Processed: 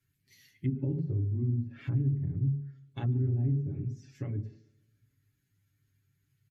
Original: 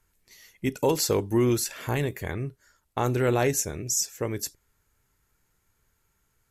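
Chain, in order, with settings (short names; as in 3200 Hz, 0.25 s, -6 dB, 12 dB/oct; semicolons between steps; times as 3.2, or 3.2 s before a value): bin magnitudes rounded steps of 15 dB; ten-band EQ 125 Hz +9 dB, 250 Hz +7 dB, 500 Hz -10 dB, 1000 Hz -12 dB, 2000 Hz +4 dB, 4000 Hz +4 dB, 8000 Hz -9 dB; flange 0.44 Hz, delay 7 ms, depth 1.9 ms, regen -88%; bell 9400 Hz +4.5 dB 0.98 oct; on a send at -5.5 dB: reverb RT60 0.45 s, pre-delay 3 ms; on the sum: compressor 6:1, threshold -22 dBFS, peak gain reduction 6.5 dB; HPF 50 Hz; treble ducked by the level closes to 370 Hz, closed at -24.5 dBFS; comb 7.2 ms, depth 90%; tape echo 0.145 s, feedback 45%, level -21 dB, low-pass 1200 Hz; gain -6.5 dB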